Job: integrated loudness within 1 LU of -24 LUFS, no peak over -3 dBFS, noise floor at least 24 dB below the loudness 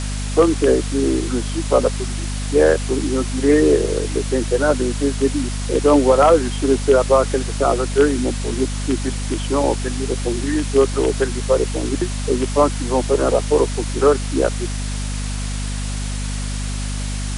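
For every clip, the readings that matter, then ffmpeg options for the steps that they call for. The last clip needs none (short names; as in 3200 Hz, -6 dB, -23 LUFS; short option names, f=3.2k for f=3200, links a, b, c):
hum 50 Hz; harmonics up to 250 Hz; hum level -22 dBFS; noise floor -24 dBFS; noise floor target -43 dBFS; loudness -19.0 LUFS; peak -2.5 dBFS; loudness target -24.0 LUFS
-> -af "bandreject=f=50:t=h:w=4,bandreject=f=100:t=h:w=4,bandreject=f=150:t=h:w=4,bandreject=f=200:t=h:w=4,bandreject=f=250:t=h:w=4"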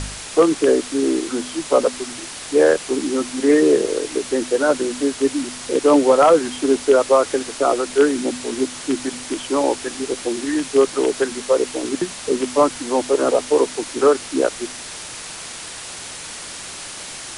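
hum none; noise floor -34 dBFS; noise floor target -43 dBFS
-> -af "afftdn=nr=9:nf=-34"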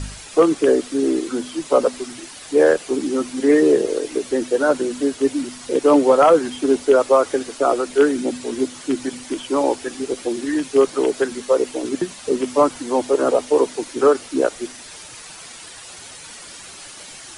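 noise floor -39 dBFS; noise floor target -43 dBFS
-> -af "afftdn=nr=6:nf=-39"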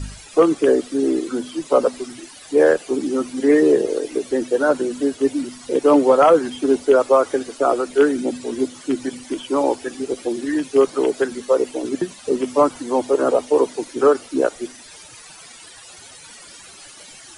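noise floor -42 dBFS; noise floor target -43 dBFS
-> -af "afftdn=nr=6:nf=-42"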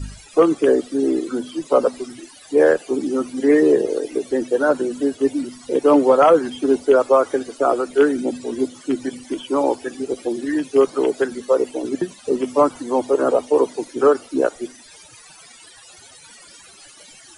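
noise floor -45 dBFS; loudness -19.0 LUFS; peak -4.0 dBFS; loudness target -24.0 LUFS
-> -af "volume=-5dB"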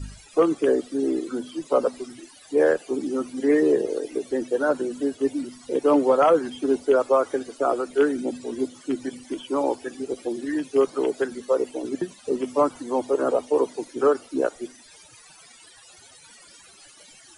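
loudness -24.0 LUFS; peak -9.0 dBFS; noise floor -50 dBFS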